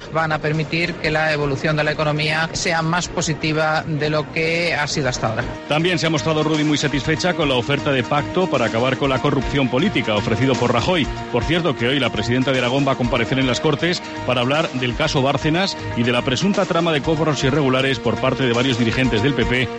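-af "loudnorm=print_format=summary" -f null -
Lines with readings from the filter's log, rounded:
Input Integrated:    -18.6 LUFS
Input True Peak:      -4.5 dBTP
Input LRA:             1.3 LU
Input Threshold:     -28.6 LUFS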